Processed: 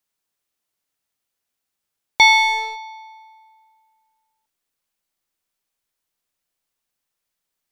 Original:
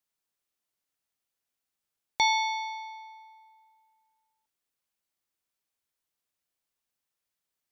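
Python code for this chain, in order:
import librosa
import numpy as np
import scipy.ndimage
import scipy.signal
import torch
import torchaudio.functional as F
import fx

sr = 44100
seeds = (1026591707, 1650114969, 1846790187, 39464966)

p1 = fx.dynamic_eq(x, sr, hz=2500.0, q=1.6, threshold_db=-42.0, ratio=4.0, max_db=8)
p2 = fx.backlash(p1, sr, play_db=-25.5)
p3 = p1 + F.gain(torch.from_numpy(p2), -5.0).numpy()
y = F.gain(torch.from_numpy(p3), 5.5).numpy()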